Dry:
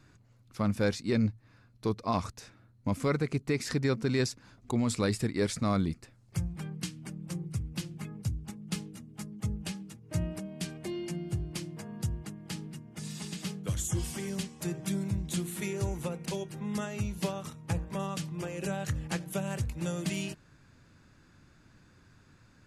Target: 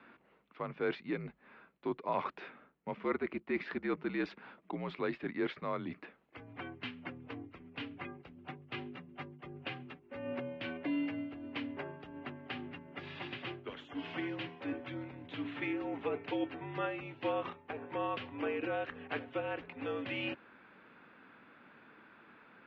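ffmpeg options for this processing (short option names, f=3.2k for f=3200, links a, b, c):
-af "areverse,acompressor=threshold=-36dB:ratio=6,areverse,highpass=f=320:t=q:w=0.5412,highpass=f=320:t=q:w=1.307,lowpass=f=3.1k:t=q:w=0.5176,lowpass=f=3.1k:t=q:w=0.7071,lowpass=f=3.1k:t=q:w=1.932,afreqshift=-63,volume=7.5dB"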